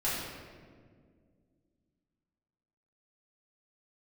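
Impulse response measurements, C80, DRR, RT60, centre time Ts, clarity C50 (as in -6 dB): 1.5 dB, -10.5 dB, 1.9 s, 99 ms, -0.5 dB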